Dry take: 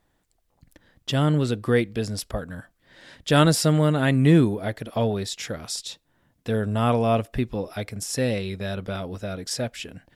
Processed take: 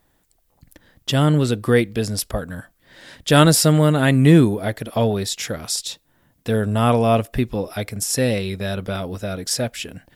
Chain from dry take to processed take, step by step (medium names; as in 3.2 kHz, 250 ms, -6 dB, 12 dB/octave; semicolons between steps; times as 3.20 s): treble shelf 11 kHz +12 dB; trim +4.5 dB